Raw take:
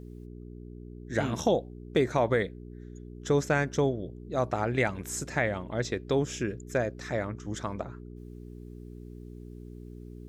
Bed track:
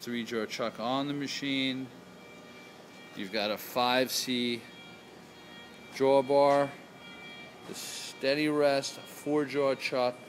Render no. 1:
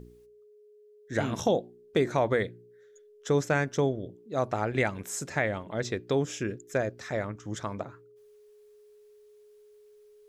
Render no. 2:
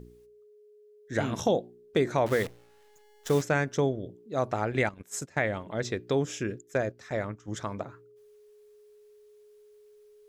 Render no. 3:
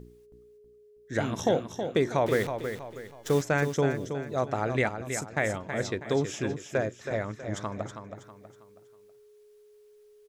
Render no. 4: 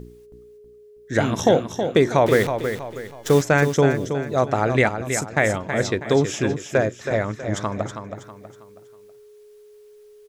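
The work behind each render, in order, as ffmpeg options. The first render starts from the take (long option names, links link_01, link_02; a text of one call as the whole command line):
ffmpeg -i in.wav -af "bandreject=frequency=60:width_type=h:width=4,bandreject=frequency=120:width_type=h:width=4,bandreject=frequency=180:width_type=h:width=4,bandreject=frequency=240:width_type=h:width=4,bandreject=frequency=300:width_type=h:width=4,bandreject=frequency=360:width_type=h:width=4" out.wav
ffmpeg -i in.wav -filter_complex "[0:a]asettb=1/sr,asplit=3[link_01][link_02][link_03];[link_01]atrim=end=2.264[link_04];[link_02]atrim=start=2.26:end=3.42,asetpts=PTS-STARTPTS,afade=type=in:duration=0.004:curve=qsin,afade=type=out:start_time=1.156:duration=0.004:curve=qsin,acrusher=bits=7:dc=4:mix=0:aa=0.000001[link_05];[link_03]atrim=start=3.416[link_06];[link_04][link_05]acrossfade=duration=0.004:curve1=hsin:curve2=qsin[link_07];[link_07][link_06]acrossfade=duration=0.004:curve1=qsin:curve2=hsin,asettb=1/sr,asplit=3[link_08][link_09][link_10];[link_08]atrim=end=4.894[link_11];[link_09]atrim=start=4.89:end=5.5,asetpts=PTS-STARTPTS,afade=type=in:duration=0.004:curve=qsin,afade=type=out:start_time=0.606:duration=0.004:curve=qsin,agate=range=-16dB:threshold=-37dB:ratio=16:release=100:detection=peak[link_12];[link_10]atrim=start=5.496[link_13];[link_11][link_12]acrossfade=duration=0.004:curve1=hsin:curve2=qsin[link_14];[link_14][link_13]acrossfade=duration=0.004:curve1=qsin:curve2=hsin,asplit=3[link_15][link_16][link_17];[link_15]afade=type=out:start_time=6.6:duration=0.02[link_18];[link_16]agate=range=-7dB:threshold=-39dB:ratio=16:release=100:detection=peak,afade=type=in:start_time=6.6:duration=0.02,afade=type=out:start_time=7.51:duration=0.02[link_19];[link_17]afade=type=in:start_time=7.51:duration=0.02[link_20];[link_18][link_19][link_20]amix=inputs=3:normalize=0" out.wav
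ffmpeg -i in.wav -af "aecho=1:1:322|644|966|1288:0.398|0.151|0.0575|0.0218" out.wav
ffmpeg -i in.wav -af "volume=8.5dB" out.wav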